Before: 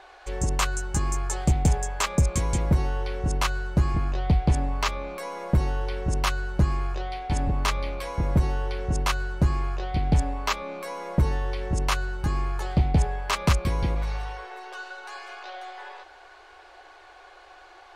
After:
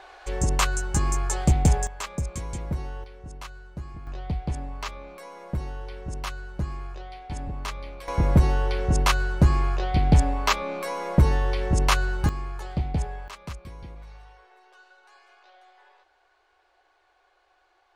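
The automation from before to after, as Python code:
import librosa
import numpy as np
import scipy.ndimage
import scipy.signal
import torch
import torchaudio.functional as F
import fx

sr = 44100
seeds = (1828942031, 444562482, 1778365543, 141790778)

y = fx.gain(x, sr, db=fx.steps((0.0, 2.0), (1.87, -8.0), (3.04, -15.0), (4.07, -8.0), (8.08, 4.0), (12.29, -5.5), (13.28, -16.0)))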